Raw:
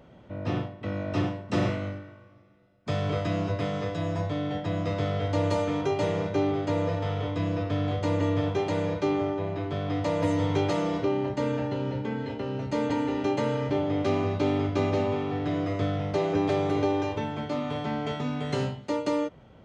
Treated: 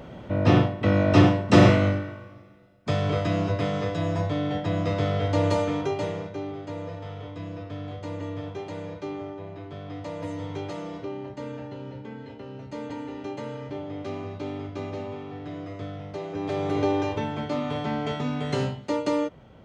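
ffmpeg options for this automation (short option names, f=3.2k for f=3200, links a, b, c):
-af "volume=21dB,afade=t=out:st=2.03:d=0.94:silence=0.398107,afade=t=out:st=5.5:d=0.85:silence=0.281838,afade=t=in:st=16.33:d=0.55:silence=0.316228"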